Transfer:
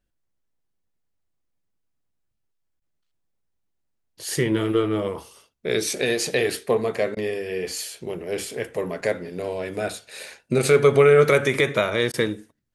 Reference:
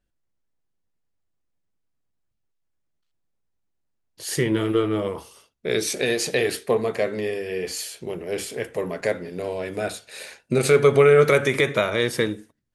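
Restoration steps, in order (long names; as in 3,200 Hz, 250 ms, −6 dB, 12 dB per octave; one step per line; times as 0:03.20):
repair the gap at 0:02.80/0:07.15/0:12.12, 16 ms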